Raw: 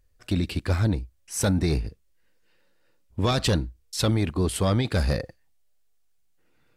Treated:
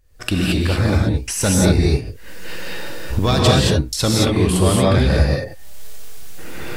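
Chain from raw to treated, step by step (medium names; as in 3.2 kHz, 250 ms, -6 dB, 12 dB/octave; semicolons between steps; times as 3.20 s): recorder AGC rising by 68 dB/s; 4.67–5.16 s: treble shelf 5.8 kHz -6.5 dB; gated-style reverb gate 250 ms rising, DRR -3 dB; trim +4.5 dB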